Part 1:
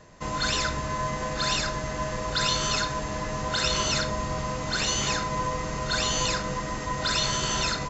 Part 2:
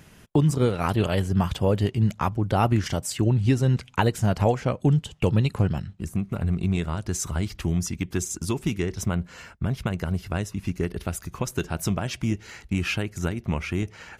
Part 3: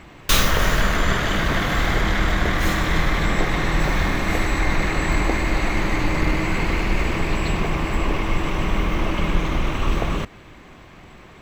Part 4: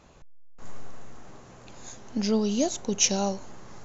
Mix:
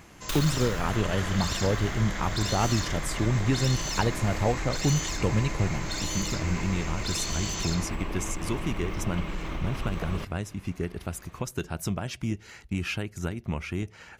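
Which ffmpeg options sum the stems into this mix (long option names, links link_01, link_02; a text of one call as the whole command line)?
ffmpeg -i stem1.wav -i stem2.wav -i stem3.wav -filter_complex "[0:a]crystalizer=i=5:c=0,volume=-12.5dB[link_01];[1:a]volume=-4.5dB[link_02];[2:a]volume=-9dB[link_03];[link_01][link_03]amix=inputs=2:normalize=0,asoftclip=type=hard:threshold=-21.5dB,acompressor=threshold=-28dB:ratio=6,volume=0dB[link_04];[link_02][link_04]amix=inputs=2:normalize=0" out.wav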